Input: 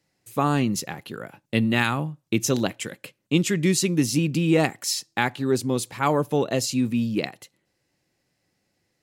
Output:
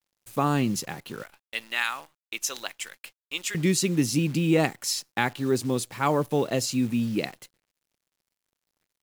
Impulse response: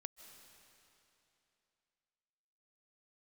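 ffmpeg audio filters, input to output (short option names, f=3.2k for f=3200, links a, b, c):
-filter_complex "[0:a]asettb=1/sr,asplit=3[a][b][c];[a]atrim=end=1.234[d];[b]atrim=start=1.23:end=3.55,asetpts=PTS-STARTPTS,afade=t=in:d=0.004:c=qsin,afade=t=out:st=2.316:d=0.004:c=qsin,highpass=1.1k[e];[c]atrim=start=3.546[f];[d][e]acrossfade=d=0.004:c1=hsin:c2=qsin[g];[g][f]acrossfade=d=0.004:c1=qsin:c2=hsin,acrusher=bits=8:dc=4:mix=0:aa=0.000001,volume=-2dB"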